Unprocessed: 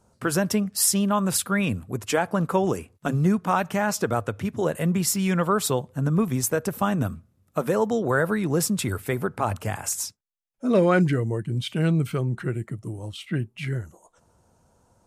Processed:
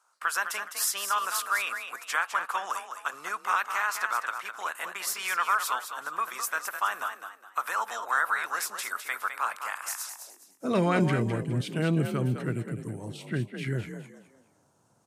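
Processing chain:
ceiling on every frequency bin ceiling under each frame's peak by 13 dB
echo with shifted repeats 207 ms, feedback 31%, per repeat +43 Hz, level −8 dB
high-pass filter sweep 1,200 Hz → 120 Hz, 0:10.09–0:10.63
level −7 dB

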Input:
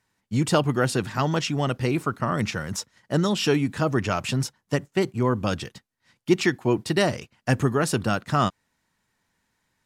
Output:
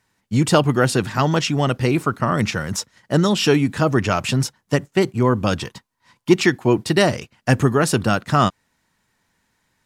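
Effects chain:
0:05.59–0:06.32: parametric band 990 Hz +13 dB 0.29 octaves
level +5.5 dB

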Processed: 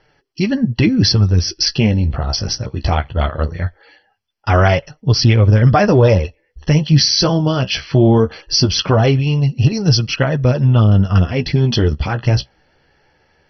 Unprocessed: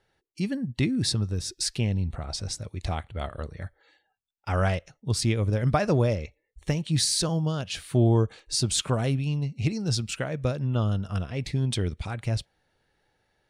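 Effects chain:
flanger 0.2 Hz, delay 6.4 ms, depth 9.7 ms, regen +29%
boost into a limiter +19 dB
level −1 dB
MP2 32 kbit/s 32,000 Hz

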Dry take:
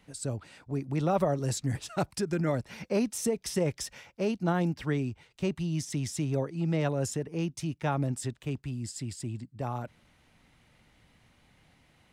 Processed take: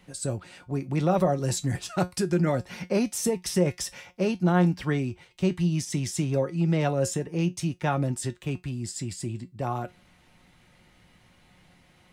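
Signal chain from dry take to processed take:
tuned comb filter 180 Hz, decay 0.17 s, harmonics all, mix 70%
in parallel at 0 dB: brickwall limiter −26 dBFS, peak gain reduction 7 dB
on the sum: level +5 dB

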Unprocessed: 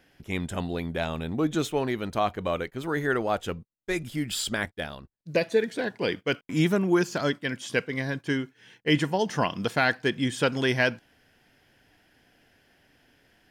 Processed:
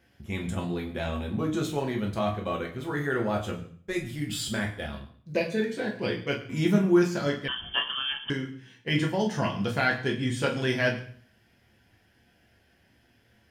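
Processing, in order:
parametric band 120 Hz +9.5 dB 1 octave
convolution reverb RT60 0.50 s, pre-delay 7 ms, DRR −0.5 dB
0:07.48–0:08.30: voice inversion scrambler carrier 3,300 Hz
level −6 dB

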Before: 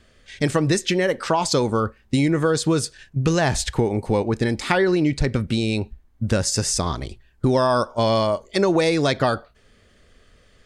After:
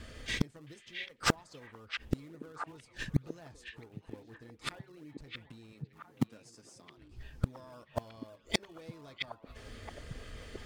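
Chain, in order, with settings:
notch comb filter 190 Hz
in parallel at −9 dB: sample-and-hold swept by an LFO 40×, swing 100% 3.7 Hz
on the sum: gate with flip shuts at −19 dBFS, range −40 dB
0:05.72–0:06.98: high-pass filter 150 Hz 24 dB per octave
echo through a band-pass that steps 667 ms, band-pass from 2,600 Hz, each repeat −1.4 octaves, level −3 dB
level +7 dB
MP3 128 kbit/s 44,100 Hz

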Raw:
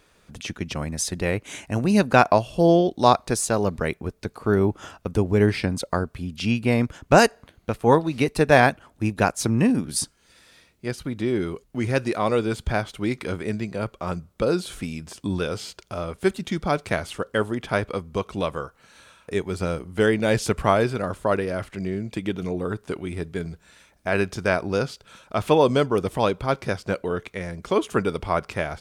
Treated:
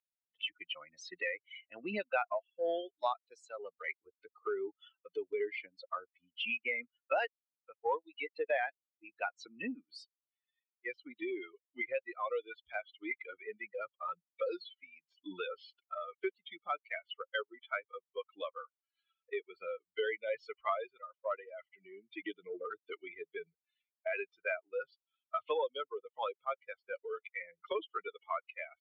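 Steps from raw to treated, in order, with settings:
spectral dynamics exaggerated over time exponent 3
elliptic band-pass filter 510–2,900 Hz, stop band 60 dB
transient designer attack −4 dB, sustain +3 dB
multiband upward and downward compressor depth 100%
level +3 dB

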